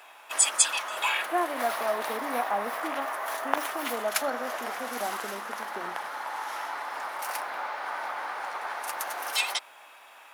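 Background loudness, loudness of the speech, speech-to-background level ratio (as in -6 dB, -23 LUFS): -30.5 LUFS, -34.5 LUFS, -4.0 dB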